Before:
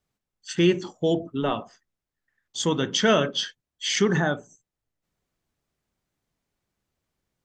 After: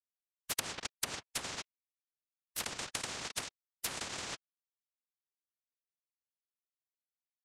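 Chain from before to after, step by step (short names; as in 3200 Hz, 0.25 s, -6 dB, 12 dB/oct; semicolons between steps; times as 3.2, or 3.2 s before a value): backlash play -21.5 dBFS; compressor 8:1, threshold -30 dBFS, peak gain reduction 15.5 dB; noise vocoder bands 1; treble ducked by the level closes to 660 Hz, closed at -30 dBFS; spectral compressor 10:1; gain +5.5 dB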